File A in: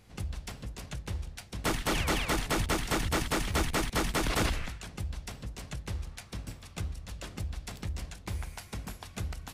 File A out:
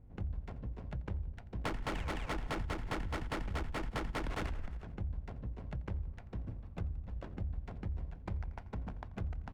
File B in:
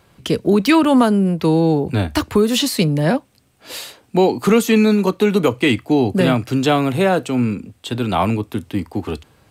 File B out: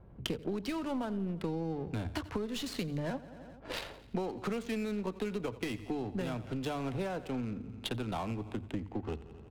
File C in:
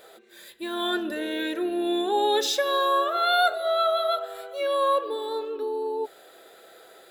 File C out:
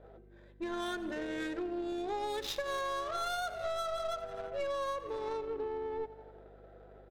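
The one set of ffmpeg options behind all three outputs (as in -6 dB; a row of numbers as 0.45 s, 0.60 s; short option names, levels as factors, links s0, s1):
-filter_complex "[0:a]lowshelf=f=340:g=-7,bandreject=f=1200:w=19,acrossover=split=110|970|5300[s0][s1][s2][s3];[s2]aeval=exprs='clip(val(0),-1,0.0631)':c=same[s4];[s0][s1][s4][s3]amix=inputs=4:normalize=0,adynamicsmooth=sensitivity=4:basefreq=600,lowshelf=f=140:g=11,bandreject=f=50:t=h:w=6,bandreject=f=100:t=h:w=6,bandreject=f=150:t=h:w=6,aecho=1:1:86|172|258|344|430:0.112|0.0651|0.0377|0.0219|0.0127,acompressor=threshold=0.02:ratio=8,aeval=exprs='val(0)+0.00126*(sin(2*PI*50*n/s)+sin(2*PI*2*50*n/s)/2+sin(2*PI*3*50*n/s)/3+sin(2*PI*4*50*n/s)/4+sin(2*PI*5*50*n/s)/5)':c=same,aeval=exprs='0.112*(cos(1*acos(clip(val(0)/0.112,-1,1)))-cos(1*PI/2))+0.00631*(cos(6*acos(clip(val(0)/0.112,-1,1)))-cos(6*PI/2))':c=same"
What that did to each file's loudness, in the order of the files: -7.5 LU, -20.5 LU, -12.0 LU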